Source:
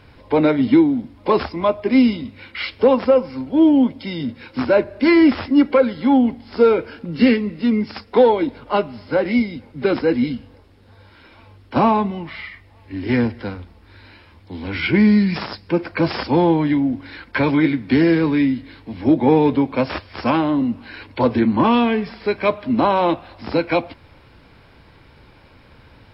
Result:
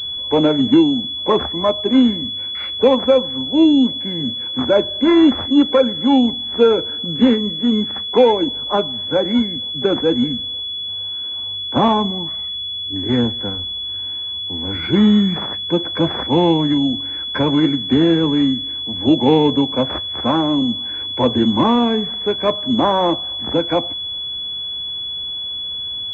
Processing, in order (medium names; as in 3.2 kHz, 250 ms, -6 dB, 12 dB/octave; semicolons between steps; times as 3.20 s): 3.65–3.87 s: time-frequency box 490–1200 Hz -9 dB; 11.88–12.96 s: level-controlled noise filter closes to 400 Hz, open at -15 dBFS; class-D stage that switches slowly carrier 3.4 kHz; trim +1 dB